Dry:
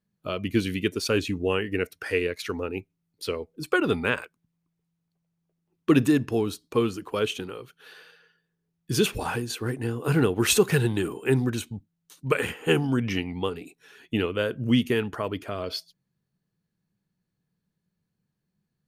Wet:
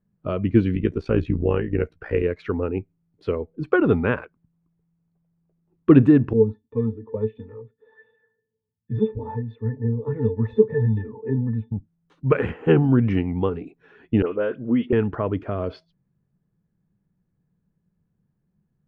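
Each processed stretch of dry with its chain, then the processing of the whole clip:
0.75–2.23 s: bass shelf 81 Hz +8.5 dB + AM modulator 58 Hz, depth 60% + doubling 13 ms -12 dB
6.33–11.72 s: pitch-class resonator A, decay 0.12 s + sweeping bell 1.4 Hz 330–3200 Hz +10 dB
14.22–14.93 s: high-pass 310 Hz + distance through air 260 m + phase dispersion highs, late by 62 ms, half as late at 2.1 kHz
whole clip: low-pass 1.8 kHz 12 dB/octave; tilt EQ -2 dB/octave; trim +3 dB

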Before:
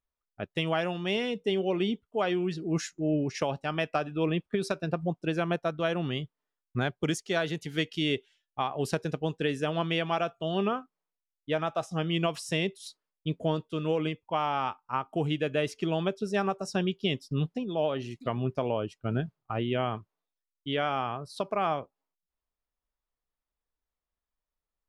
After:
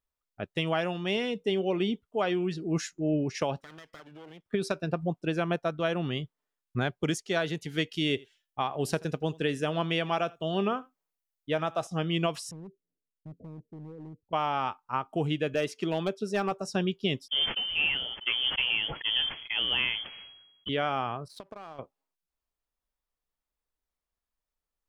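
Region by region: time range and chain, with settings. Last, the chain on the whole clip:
3.60–4.46 s: comb filter that takes the minimum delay 0.57 ms + high-pass 250 Hz 6 dB/octave + compression 4:1, threshold -47 dBFS
7.89–11.87 s: treble shelf 9.8 kHz +6.5 dB + delay 83 ms -23.5 dB
12.51–14.33 s: compression 2:1, threshold -41 dBFS + Gaussian low-pass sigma 21 samples + hard clipper -39.5 dBFS
15.54–16.52 s: high-pass 160 Hz + overload inside the chain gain 20 dB + tape noise reduction on one side only encoder only
17.28–20.69 s: modulation noise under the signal 13 dB + frequency inversion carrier 3.3 kHz + decay stretcher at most 52 dB/s
21.28–21.79 s: compression 8:1, threshold -37 dBFS + power-law waveshaper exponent 1.4
whole clip: none

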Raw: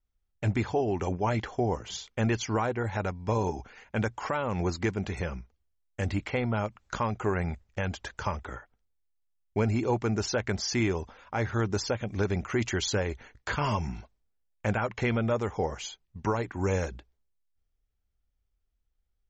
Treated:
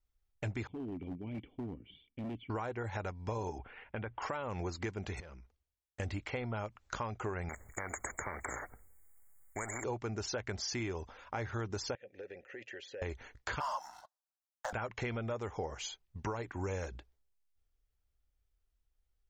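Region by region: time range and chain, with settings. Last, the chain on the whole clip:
0.67–2.50 s: cascade formant filter i + peaking EQ 170 Hz +6 dB 0.68 oct + hard clipper -31.5 dBFS
3.58–4.22 s: steep low-pass 3.3 kHz 48 dB/octave + compression 3:1, threshold -32 dBFS
5.20–6.00 s: compression 4:1, threshold -44 dBFS + valve stage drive 42 dB, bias 0.5
7.49–9.84 s: brick-wall FIR band-stop 2.3–6.6 kHz + treble shelf 6 kHz +7.5 dB + spectrum-flattening compressor 4:1
11.95–13.02 s: vowel filter e + band-stop 620 Hz, Q 7.4 + compression 4:1, threshold -40 dBFS
13.60–14.73 s: high-pass 520 Hz 24 dB/octave + waveshaping leveller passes 2 + static phaser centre 990 Hz, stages 4
whole clip: peaking EQ 190 Hz -5.5 dB 0.86 oct; compression 3:1, threshold -36 dBFS; trim -1 dB

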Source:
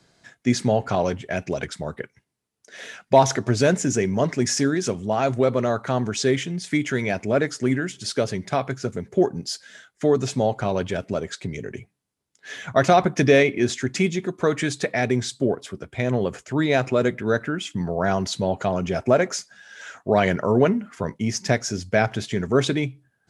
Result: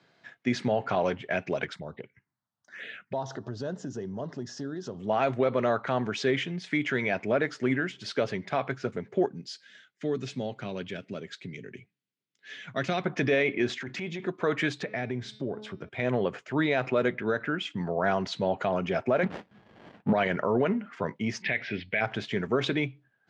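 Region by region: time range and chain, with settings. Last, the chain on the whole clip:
1.76–5.00 s: bass shelf 90 Hz +11.5 dB + compression 2.5:1, threshold -31 dBFS + touch-sensitive phaser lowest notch 380 Hz, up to 2.3 kHz, full sweep at -29.5 dBFS
9.26–13.06 s: high-pass 120 Hz + peaking EQ 840 Hz -14.5 dB 2.1 oct
13.76–14.24 s: careless resampling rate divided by 2×, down filtered, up hold + transient shaper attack -10 dB, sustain +3 dB + compression 4:1, threshold -27 dBFS
14.82–15.89 s: bass shelf 260 Hz +11 dB + de-hum 213.5 Hz, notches 28 + compression 2:1, threshold -32 dBFS
19.23–20.13 s: resonant low shelf 280 Hz +9.5 dB, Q 3 + sliding maximum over 33 samples
21.42–22.01 s: steep low-pass 3.6 kHz + resonant high shelf 1.6 kHz +8 dB, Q 3
whole clip: Chebyshev band-pass 120–2900 Hz, order 2; bass shelf 280 Hz -8.5 dB; peak limiter -15.5 dBFS

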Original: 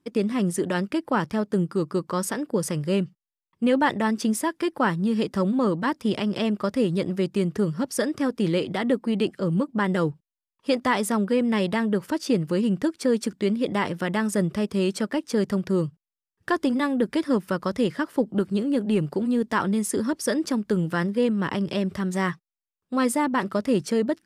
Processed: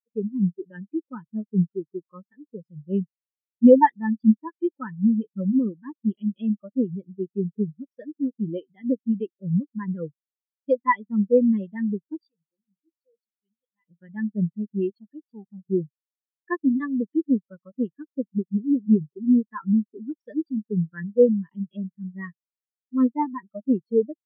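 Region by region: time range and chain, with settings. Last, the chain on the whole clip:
12.28–13.88 s: pre-emphasis filter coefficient 0.8 + hum notches 60/120/180/240/300/360/420/480 Hz + comb 6.1 ms, depth 36%
14.90–15.70 s: high-pass 91 Hz 24 dB/octave + transformer saturation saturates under 690 Hz
whole clip: low-pass 5.1 kHz 12 dB/octave; peaking EQ 3.6 kHz +12 dB 2.4 oct; spectral contrast expander 4:1

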